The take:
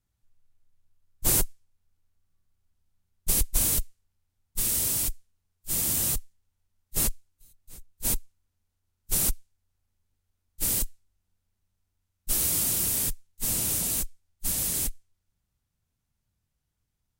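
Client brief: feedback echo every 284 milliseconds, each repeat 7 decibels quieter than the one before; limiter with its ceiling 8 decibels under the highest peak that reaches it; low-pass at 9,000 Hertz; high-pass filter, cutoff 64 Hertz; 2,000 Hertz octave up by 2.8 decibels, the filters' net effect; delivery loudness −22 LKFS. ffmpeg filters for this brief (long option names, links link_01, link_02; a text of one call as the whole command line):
ffmpeg -i in.wav -af "highpass=64,lowpass=9000,equalizer=frequency=2000:width_type=o:gain=3.5,alimiter=limit=-21.5dB:level=0:latency=1,aecho=1:1:284|568|852|1136|1420:0.447|0.201|0.0905|0.0407|0.0183,volume=10.5dB" out.wav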